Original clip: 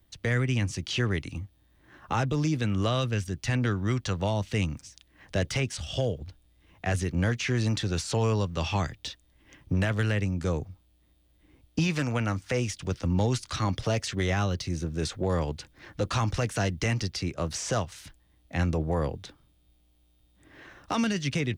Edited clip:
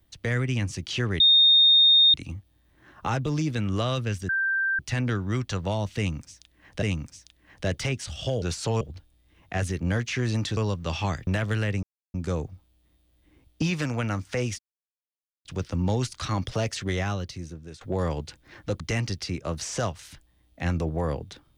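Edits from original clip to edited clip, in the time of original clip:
0:01.20: insert tone 3,680 Hz −13.5 dBFS 0.94 s
0:03.35: insert tone 1,570 Hz −22 dBFS 0.50 s
0:04.53–0:05.38: repeat, 2 plays
0:07.89–0:08.28: move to 0:06.13
0:08.98–0:09.75: remove
0:10.31: splice in silence 0.31 s
0:12.76: splice in silence 0.86 s
0:14.20–0:15.12: fade out, to −17.5 dB
0:16.11–0:16.73: remove

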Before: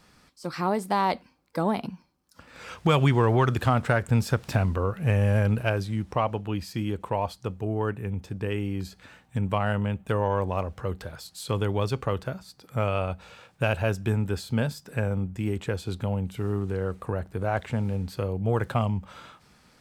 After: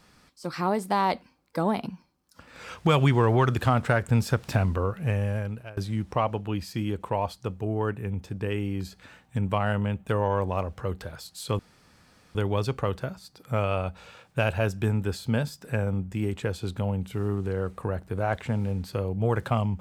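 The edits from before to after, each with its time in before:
0:04.79–0:05.77: fade out linear, to −22.5 dB
0:11.59: splice in room tone 0.76 s

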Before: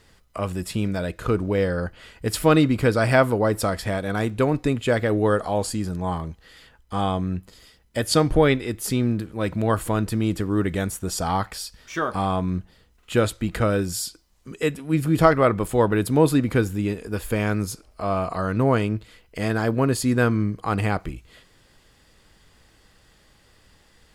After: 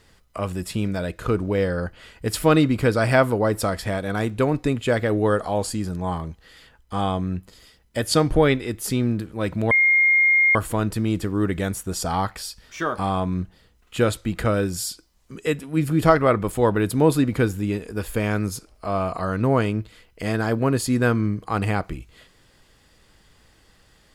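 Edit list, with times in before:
0:09.71: insert tone 2,130 Hz −13.5 dBFS 0.84 s

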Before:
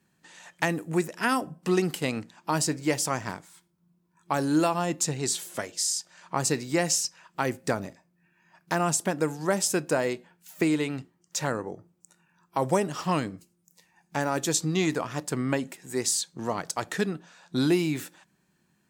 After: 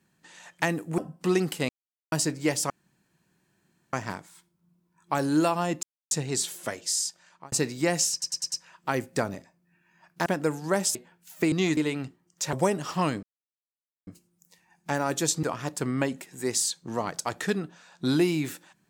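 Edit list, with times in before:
0:00.98–0:01.40: remove
0:02.11–0:02.54: silence
0:03.12: splice in room tone 1.23 s
0:05.02: splice in silence 0.28 s
0:05.96–0:06.43: fade out
0:07.03: stutter 0.10 s, 5 plays
0:08.77–0:09.03: remove
0:09.72–0:10.14: remove
0:11.47–0:12.63: remove
0:13.33: splice in silence 0.84 s
0:14.69–0:14.94: move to 0:10.71

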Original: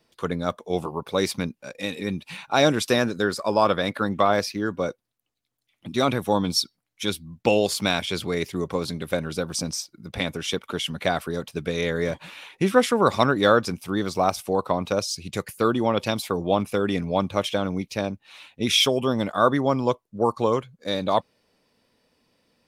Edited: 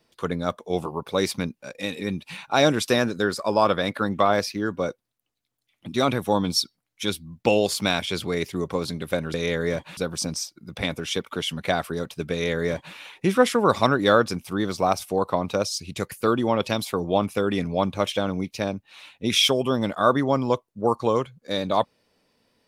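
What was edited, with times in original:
0:11.69–0:12.32: duplicate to 0:09.34

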